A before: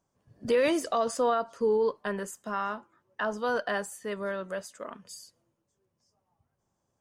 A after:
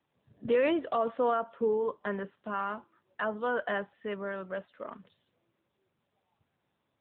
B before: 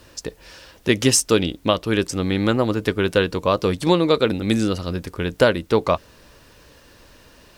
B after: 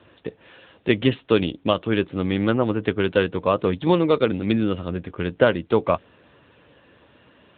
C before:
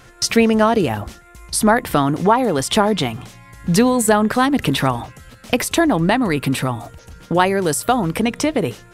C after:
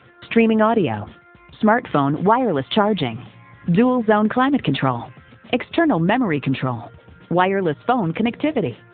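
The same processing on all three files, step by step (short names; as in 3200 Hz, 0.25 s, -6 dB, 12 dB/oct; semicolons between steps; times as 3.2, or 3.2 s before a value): gain -1 dB; AMR-NB 10.2 kbps 8000 Hz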